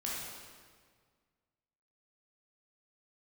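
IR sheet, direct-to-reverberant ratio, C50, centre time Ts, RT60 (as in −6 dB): −6.0 dB, −2.0 dB, 106 ms, 1.8 s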